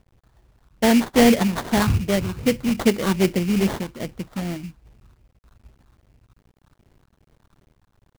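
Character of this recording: a quantiser's noise floor 10-bit, dither none; phasing stages 6, 2.5 Hz, lowest notch 550–1900 Hz; aliases and images of a low sample rate 2.6 kHz, jitter 20%; random-step tremolo

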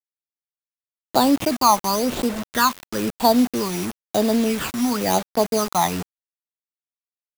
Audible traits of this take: aliases and images of a low sample rate 5.4 kHz, jitter 0%; phasing stages 12, 0.99 Hz, lowest notch 480–2200 Hz; a quantiser's noise floor 6-bit, dither none

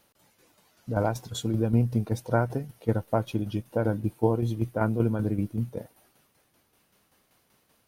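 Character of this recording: tremolo saw down 5.2 Hz, depth 55%

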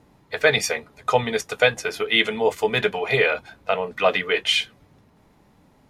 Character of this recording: noise floor -58 dBFS; spectral tilt -3.0 dB/octave

